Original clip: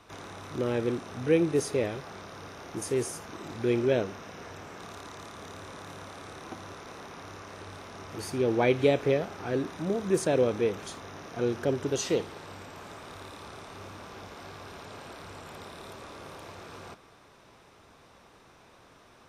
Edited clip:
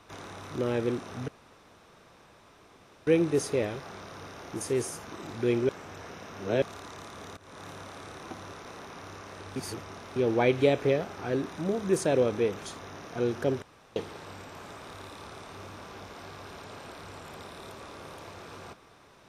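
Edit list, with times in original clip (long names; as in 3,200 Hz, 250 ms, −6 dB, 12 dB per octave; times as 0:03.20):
0:01.28: splice in room tone 1.79 s
0:03.90–0:04.83: reverse
0:05.58–0:05.85: fade in, from −18.5 dB
0:07.77–0:08.37: reverse
0:11.83–0:12.17: fill with room tone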